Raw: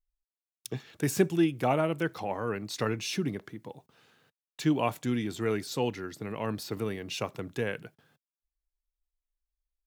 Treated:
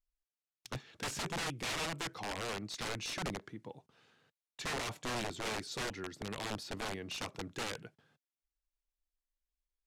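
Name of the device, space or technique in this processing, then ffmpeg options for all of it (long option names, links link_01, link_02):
overflowing digital effects unit: -af "aeval=exprs='(mod(22.4*val(0)+1,2)-1)/22.4':channel_layout=same,lowpass=8200,volume=-4.5dB"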